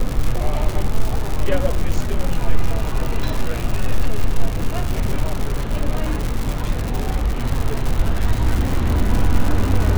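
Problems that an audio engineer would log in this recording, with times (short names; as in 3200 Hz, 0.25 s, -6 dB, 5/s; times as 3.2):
crackle 190/s -19 dBFS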